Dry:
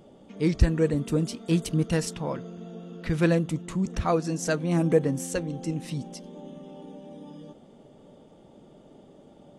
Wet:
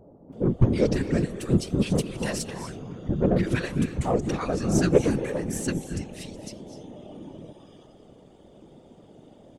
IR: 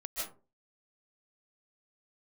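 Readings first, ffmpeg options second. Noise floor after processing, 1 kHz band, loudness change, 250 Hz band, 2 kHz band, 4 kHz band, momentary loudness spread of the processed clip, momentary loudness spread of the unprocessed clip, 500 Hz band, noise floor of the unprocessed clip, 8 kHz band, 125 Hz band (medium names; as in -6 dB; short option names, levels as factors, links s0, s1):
-53 dBFS, 0.0 dB, +1.0 dB, +1.5 dB, +0.5 dB, +1.5 dB, 20 LU, 20 LU, +1.5 dB, -53 dBFS, +1.5 dB, +1.0 dB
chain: -filter_complex "[0:a]acrossover=split=1000[s0][s1];[s1]adelay=330[s2];[s0][s2]amix=inputs=2:normalize=0,aeval=exprs='0.376*(cos(1*acos(clip(val(0)/0.376,-1,1)))-cos(1*PI/2))+0.0299*(cos(6*acos(clip(val(0)/0.376,-1,1)))-cos(6*PI/2))+0.0266*(cos(8*acos(clip(val(0)/0.376,-1,1)))-cos(8*PI/2))':c=same,asplit=2[s3][s4];[1:a]atrim=start_sample=2205,asetrate=27342,aresample=44100[s5];[s4][s5]afir=irnorm=-1:irlink=0,volume=0.2[s6];[s3][s6]amix=inputs=2:normalize=0,afftfilt=real='hypot(re,im)*cos(2*PI*random(0))':imag='hypot(re,im)*sin(2*PI*random(1))':win_size=512:overlap=0.75,volume=2"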